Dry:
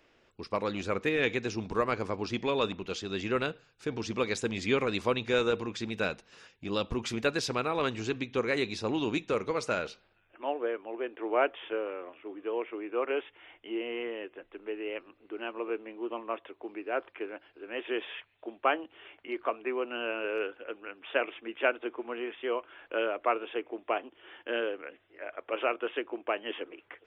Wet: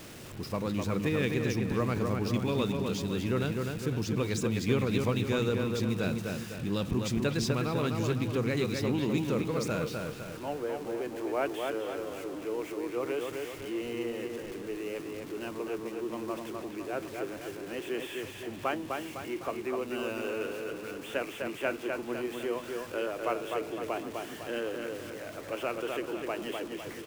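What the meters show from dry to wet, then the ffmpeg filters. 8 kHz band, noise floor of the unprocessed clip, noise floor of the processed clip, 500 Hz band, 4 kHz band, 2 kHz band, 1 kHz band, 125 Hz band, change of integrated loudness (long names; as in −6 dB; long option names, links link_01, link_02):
+4.0 dB, −68 dBFS, −43 dBFS, −1.0 dB, −1.5 dB, −3.5 dB, −3.0 dB, +10.0 dB, 0.0 dB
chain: -filter_complex "[0:a]aeval=exprs='val(0)+0.5*0.0119*sgn(val(0))':channel_layout=same,equalizer=frequency=140:width=0.72:gain=14.5,acrossover=split=4800[link_01][link_02];[link_01]aecho=1:1:253|506|759|1012|1265|1518:0.631|0.297|0.139|0.0655|0.0308|0.0145[link_03];[link_02]acontrast=69[link_04];[link_03][link_04]amix=inputs=2:normalize=0,volume=-7dB"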